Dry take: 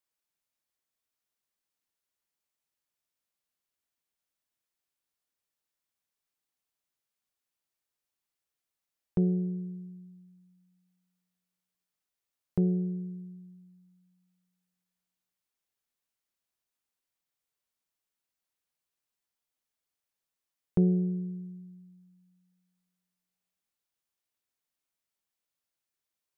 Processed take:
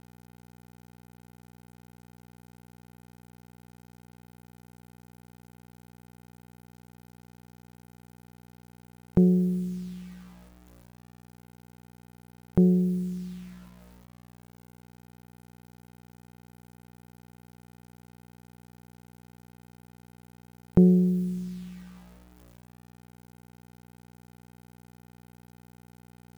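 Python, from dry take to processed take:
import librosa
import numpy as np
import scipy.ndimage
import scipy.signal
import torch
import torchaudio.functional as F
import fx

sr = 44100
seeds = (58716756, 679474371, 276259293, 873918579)

y = fx.add_hum(x, sr, base_hz=60, snr_db=23)
y = fx.quant_dither(y, sr, seeds[0], bits=10, dither='none')
y = F.gain(torch.from_numpy(y), 6.5).numpy()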